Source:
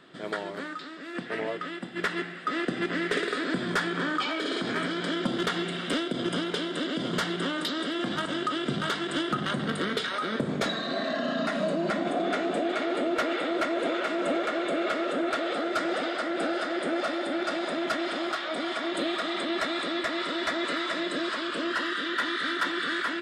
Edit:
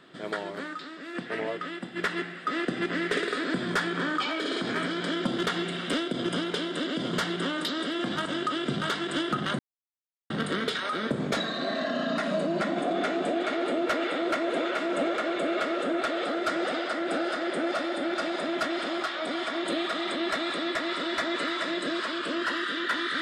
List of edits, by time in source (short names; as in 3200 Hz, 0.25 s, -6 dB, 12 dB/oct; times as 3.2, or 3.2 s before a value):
9.59 insert silence 0.71 s